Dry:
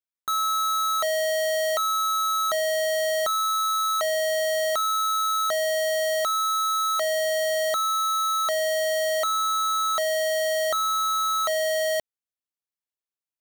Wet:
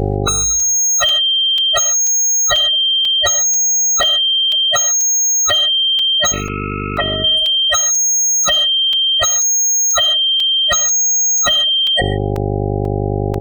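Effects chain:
gate on every frequency bin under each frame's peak −10 dB weak
automatic gain control gain up to 10 dB
hum with harmonics 50 Hz, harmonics 9, −41 dBFS −1 dB per octave
fuzz pedal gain 48 dB, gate −48 dBFS
0:06.32–0:07.24: low-pass filter 2,600 Hz 24 dB per octave
far-end echo of a speakerphone 210 ms, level −7 dB
gate on every frequency bin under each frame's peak −15 dB strong
reverb whose tail is shaped and stops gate 170 ms flat, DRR 9.5 dB
regular buffer underruns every 0.49 s, samples 128, zero, from 0:00.60
level +3 dB

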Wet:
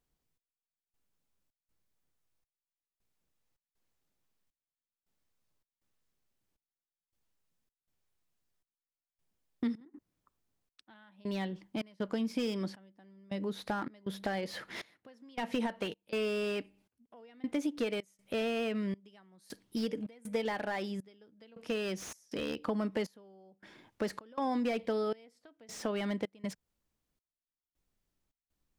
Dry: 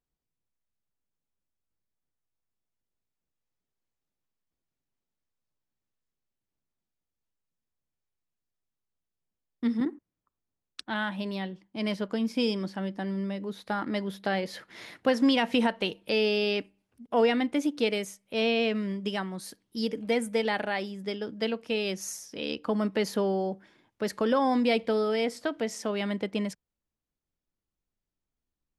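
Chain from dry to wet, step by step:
downward compressor 3 to 1, threshold −39 dBFS, peak gain reduction 14.5 dB
gate pattern "xx...xxx.xx" 80 BPM −24 dB
slew-rate limiting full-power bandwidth 20 Hz
level +5.5 dB

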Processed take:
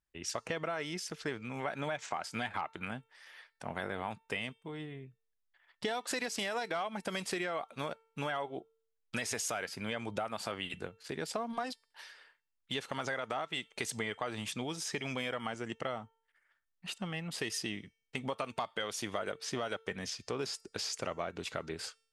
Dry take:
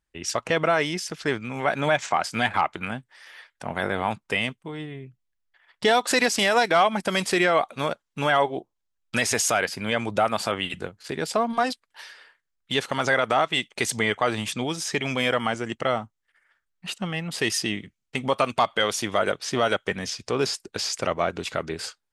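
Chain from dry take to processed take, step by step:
downward compressor, threshold −24 dBFS, peak gain reduction 9.5 dB
tuned comb filter 450 Hz, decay 0.63 s, mix 40%
level −4 dB

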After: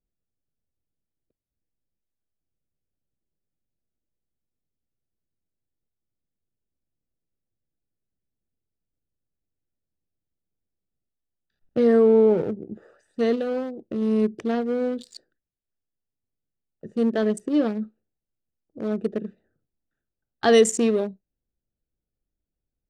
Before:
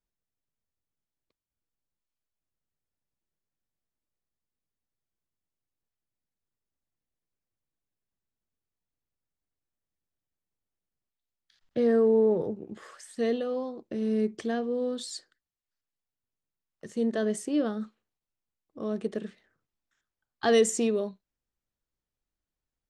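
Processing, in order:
adaptive Wiener filter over 41 samples
level +6 dB

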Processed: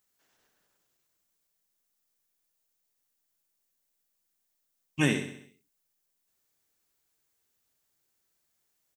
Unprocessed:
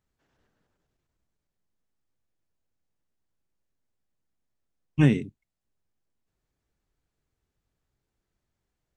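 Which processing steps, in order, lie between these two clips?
RIAA equalisation recording
repeating echo 65 ms, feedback 53%, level −9 dB

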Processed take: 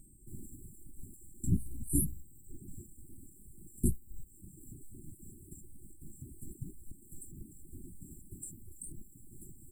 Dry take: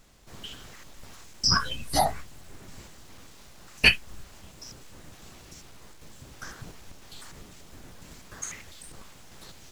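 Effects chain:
linear-phase brick-wall band-stop 390–7,300 Hz
steady tone 8,400 Hz −65 dBFS
flanger 0.22 Hz, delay 6.3 ms, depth 9.8 ms, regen −78%
reverb reduction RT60 1.1 s
level +6.5 dB

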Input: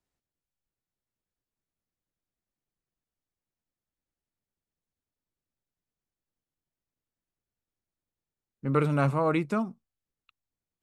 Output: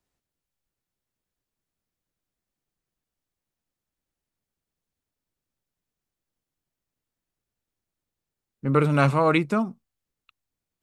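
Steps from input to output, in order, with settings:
0:08.94–0:09.38: parametric band 3,800 Hz +7.5 dB 2.4 octaves
level +4.5 dB

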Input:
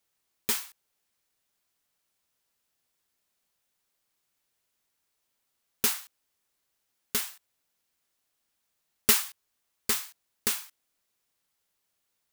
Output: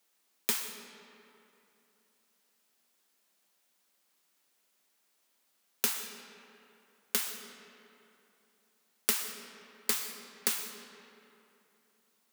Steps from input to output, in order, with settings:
Butterworth high-pass 170 Hz 72 dB per octave
downward compressor 6 to 1, threshold −31 dBFS, peak gain reduction 14.5 dB
on a send: convolution reverb RT60 3.0 s, pre-delay 80 ms, DRR 8 dB
on the sum: level +4.5 dB

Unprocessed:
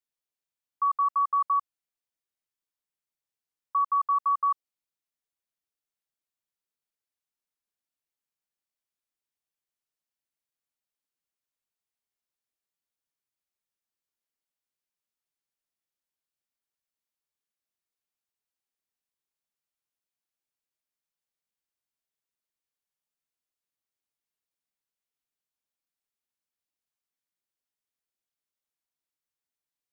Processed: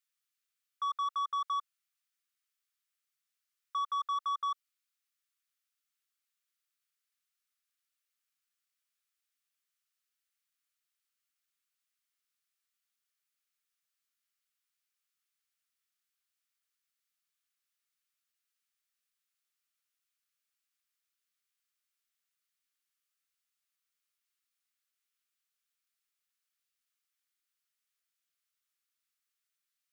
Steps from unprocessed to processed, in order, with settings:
brickwall limiter −24.5 dBFS, peak gain reduction 4.5 dB
elliptic high-pass filter 1,200 Hz, stop band 40 dB
soft clipping −35 dBFS, distortion −15 dB
level +5.5 dB

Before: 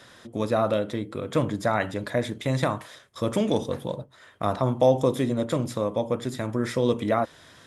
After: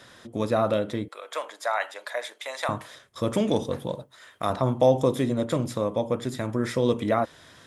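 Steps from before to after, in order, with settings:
0:01.08–0:02.69: high-pass filter 640 Hz 24 dB per octave
0:03.95–0:04.50: spectral tilt +2 dB per octave

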